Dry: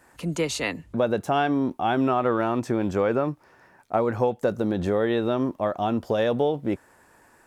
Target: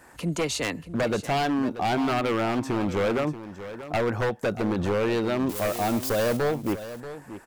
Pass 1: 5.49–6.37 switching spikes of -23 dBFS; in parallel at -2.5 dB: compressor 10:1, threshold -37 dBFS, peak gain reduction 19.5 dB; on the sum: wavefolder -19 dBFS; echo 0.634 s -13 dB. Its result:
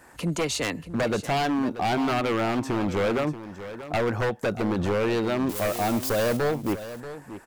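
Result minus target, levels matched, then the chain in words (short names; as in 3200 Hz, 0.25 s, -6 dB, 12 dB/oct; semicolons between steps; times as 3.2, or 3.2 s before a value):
compressor: peak gain reduction -9 dB
5.49–6.37 switching spikes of -23 dBFS; in parallel at -2.5 dB: compressor 10:1, threshold -47 dBFS, peak gain reduction 28.5 dB; on the sum: wavefolder -19 dBFS; echo 0.634 s -13 dB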